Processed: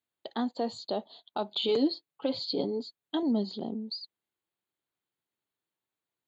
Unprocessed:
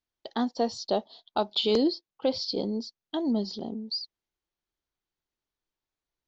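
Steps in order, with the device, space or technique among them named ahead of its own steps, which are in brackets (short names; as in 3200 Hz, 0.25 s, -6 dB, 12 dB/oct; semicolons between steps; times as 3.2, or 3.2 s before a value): PA system with an anti-feedback notch (HPF 100 Hz 24 dB/oct; Butterworth band-stop 5500 Hz, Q 2.5; limiter -21 dBFS, peak gain reduction 7 dB); 1.68–3.23 comb 7 ms, depth 59%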